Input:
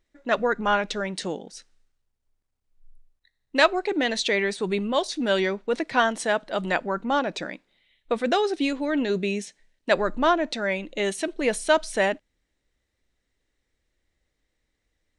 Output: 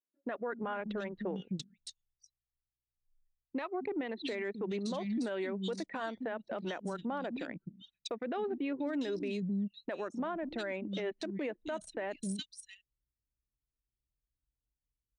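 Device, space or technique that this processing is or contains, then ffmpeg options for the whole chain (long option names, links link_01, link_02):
podcast mastering chain: -filter_complex "[0:a]asettb=1/sr,asplit=3[link_01][link_02][link_03];[link_01]atrim=end=1.314[link_04];[link_02]atrim=start=1.31:end=4.18,asetpts=PTS-STARTPTS,afade=type=in:duration=0.004:curve=qsin,afade=type=out:start_time=2.866:duration=0.004:curve=qsin,equalizer=frequency=315:width_type=o:width=0.33:gain=-5,equalizer=frequency=630:width_type=o:width=0.33:gain=-9,equalizer=frequency=1600:width_type=o:width=0.33:gain=-9,equalizer=frequency=3150:width_type=o:width=0.33:gain=-5[link_05];[link_03]atrim=start=4.176[link_06];[link_04][link_05]acrossfade=duration=0.004:curve1=hsin:curve2=qsin[link_07];[link_07][link_06]acrossfade=duration=0.004:curve1=qsin:curve2=hsin,acrossover=split=220|3100[link_08][link_09][link_10];[link_08]adelay=260[link_11];[link_10]adelay=690[link_12];[link_11][link_09][link_12]amix=inputs=3:normalize=0,anlmdn=10,highpass=83,lowshelf=frequency=330:gain=7,deesser=0.8,acompressor=threshold=-26dB:ratio=3,alimiter=level_in=4dB:limit=-24dB:level=0:latency=1:release=160,volume=-4dB" -ar 24000 -c:a libmp3lame -b:a 96k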